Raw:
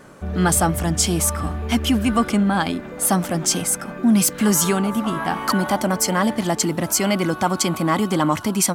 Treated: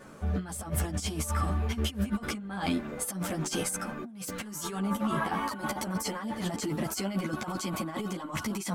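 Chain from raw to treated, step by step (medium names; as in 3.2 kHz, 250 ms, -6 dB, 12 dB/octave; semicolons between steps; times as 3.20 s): compressor with a negative ratio -23 dBFS, ratio -0.5; three-phase chorus; trim -5.5 dB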